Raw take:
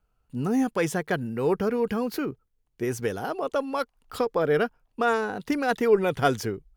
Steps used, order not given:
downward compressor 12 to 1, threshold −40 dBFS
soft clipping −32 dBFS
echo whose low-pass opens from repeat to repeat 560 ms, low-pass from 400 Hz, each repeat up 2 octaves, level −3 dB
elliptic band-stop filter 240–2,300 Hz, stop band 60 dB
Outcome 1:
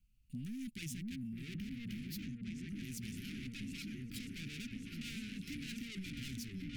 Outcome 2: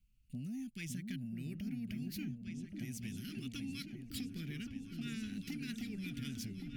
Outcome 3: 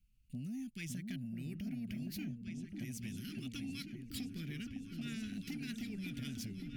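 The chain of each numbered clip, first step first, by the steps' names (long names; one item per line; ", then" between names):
echo whose low-pass opens from repeat to repeat, then soft clipping, then elliptic band-stop filter, then downward compressor
elliptic band-stop filter, then downward compressor, then soft clipping, then echo whose low-pass opens from repeat to repeat
elliptic band-stop filter, then downward compressor, then echo whose low-pass opens from repeat to repeat, then soft clipping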